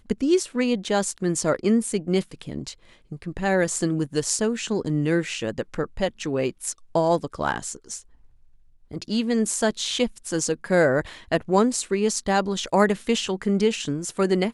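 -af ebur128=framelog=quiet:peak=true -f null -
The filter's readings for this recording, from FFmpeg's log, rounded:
Integrated loudness:
  I:         -23.9 LUFS
  Threshold: -34.6 LUFS
Loudness range:
  LRA:         4.7 LU
  Threshold: -44.9 LUFS
  LRA low:   -27.3 LUFS
  LRA high:  -22.6 LUFS
True peak:
  Peak:       -5.5 dBFS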